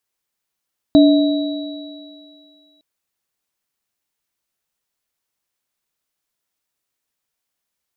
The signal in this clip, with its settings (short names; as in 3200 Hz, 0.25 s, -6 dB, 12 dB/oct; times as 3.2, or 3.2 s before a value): sine partials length 1.86 s, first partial 291 Hz, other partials 637/3900 Hz, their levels -8/-18 dB, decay 2.05 s, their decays 2.20/3.40 s, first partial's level -5.5 dB